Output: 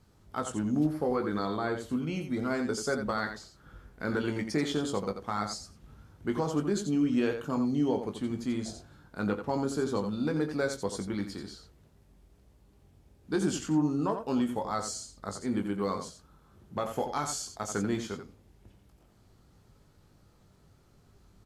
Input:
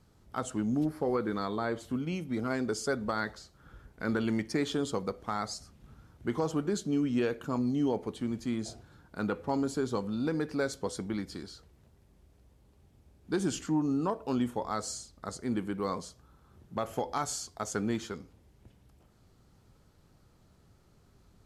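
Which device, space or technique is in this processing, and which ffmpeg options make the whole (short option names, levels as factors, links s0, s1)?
slapback doubling: -filter_complex "[0:a]asplit=3[s0][s1][s2];[s1]adelay=20,volume=0.447[s3];[s2]adelay=87,volume=0.398[s4];[s0][s3][s4]amix=inputs=3:normalize=0"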